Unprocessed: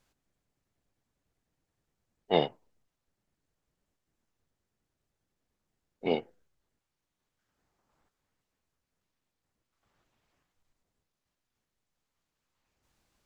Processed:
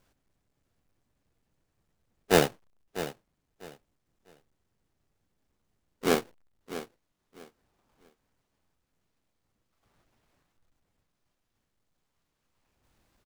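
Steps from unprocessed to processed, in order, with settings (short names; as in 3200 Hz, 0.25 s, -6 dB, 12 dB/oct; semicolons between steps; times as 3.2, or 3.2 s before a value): half-waves squared off; feedback echo 0.648 s, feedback 23%, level -13 dB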